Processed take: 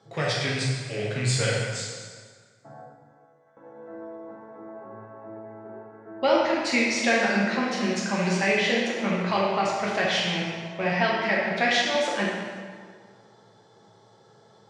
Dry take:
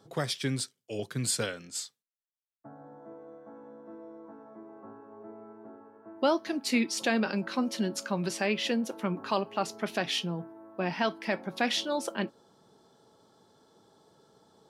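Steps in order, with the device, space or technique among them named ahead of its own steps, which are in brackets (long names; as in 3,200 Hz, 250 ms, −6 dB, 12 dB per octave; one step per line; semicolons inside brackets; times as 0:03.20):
high-pass filter 73 Hz 12 dB per octave
car door speaker with a rattle (loose part that buzzes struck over −40 dBFS, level −31 dBFS; loudspeaker in its box 98–7,400 Hz, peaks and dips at 110 Hz +10 dB, 280 Hz −8 dB, 750 Hz +3 dB, 2,000 Hz +9 dB)
0:02.81–0:03.57: first difference
dense smooth reverb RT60 1.8 s, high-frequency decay 0.75×, DRR −4.5 dB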